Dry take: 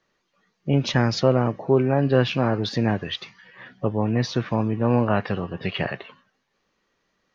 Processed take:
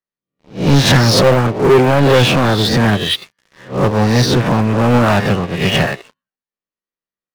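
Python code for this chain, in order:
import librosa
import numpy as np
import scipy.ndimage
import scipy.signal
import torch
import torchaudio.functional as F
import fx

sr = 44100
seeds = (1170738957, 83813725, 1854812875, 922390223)

y = fx.spec_swells(x, sr, rise_s=0.6)
y = fx.leveller(y, sr, passes=5)
y = fx.upward_expand(y, sr, threshold_db=-18.0, expansion=2.5)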